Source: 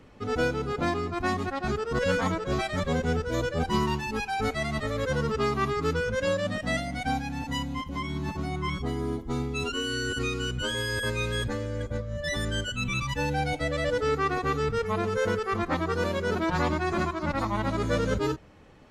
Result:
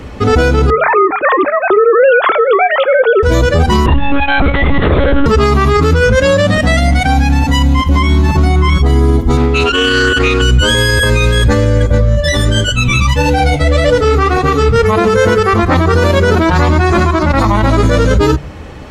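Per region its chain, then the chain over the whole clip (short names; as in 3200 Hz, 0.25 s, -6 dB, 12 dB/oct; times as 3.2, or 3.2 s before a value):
0.7–3.23 sine-wave speech + de-hum 420.8 Hz, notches 8
3.86–5.26 bell 160 Hz +7.5 dB 1.1 oct + monotone LPC vocoder at 8 kHz 280 Hz
9.37–10.42 tone controls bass -9 dB, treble -10 dB + Doppler distortion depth 0.16 ms
12.15–14.76 bell 1700 Hz -5 dB 0.3 oct + flange 1.7 Hz, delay 5.8 ms, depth 5.9 ms, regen -51%
whole clip: bell 66 Hz +11 dB 0.79 oct; de-hum 48.31 Hz, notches 5; maximiser +23.5 dB; gain -1 dB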